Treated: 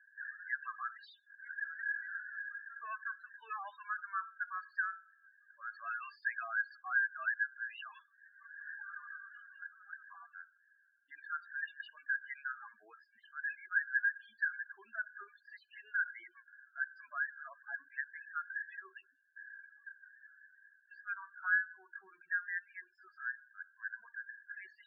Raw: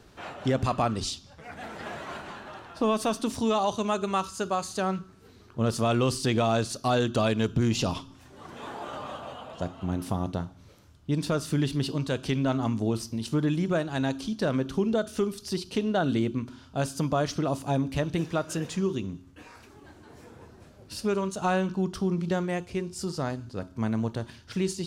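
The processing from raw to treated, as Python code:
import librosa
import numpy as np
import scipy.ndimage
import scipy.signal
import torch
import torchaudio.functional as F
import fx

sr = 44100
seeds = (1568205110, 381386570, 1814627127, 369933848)

y = fx.ladder_bandpass(x, sr, hz=1700.0, resonance_pct=85)
y = fx.spec_topn(y, sr, count=8)
y = fx.env_lowpass(y, sr, base_hz=2000.0, full_db=-40.0)
y = y * librosa.db_to_amplitude(4.0)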